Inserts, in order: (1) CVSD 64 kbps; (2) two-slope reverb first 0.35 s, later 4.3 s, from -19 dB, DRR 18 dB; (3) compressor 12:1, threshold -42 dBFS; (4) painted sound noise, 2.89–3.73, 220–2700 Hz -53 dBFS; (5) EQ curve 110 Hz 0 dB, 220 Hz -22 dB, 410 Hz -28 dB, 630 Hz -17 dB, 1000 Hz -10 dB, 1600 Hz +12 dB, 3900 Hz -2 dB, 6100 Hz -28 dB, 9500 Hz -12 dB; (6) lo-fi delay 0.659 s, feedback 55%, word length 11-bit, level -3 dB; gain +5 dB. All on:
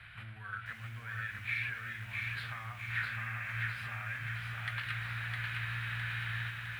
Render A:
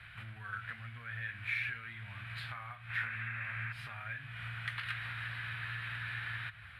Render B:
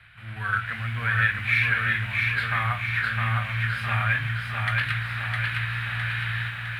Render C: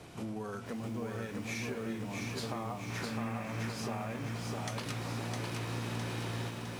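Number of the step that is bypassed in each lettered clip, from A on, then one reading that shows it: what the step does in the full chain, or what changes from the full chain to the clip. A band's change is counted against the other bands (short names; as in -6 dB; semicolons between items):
6, 125 Hz band -2.0 dB; 3, 500 Hz band +3.0 dB; 5, 500 Hz band +18.5 dB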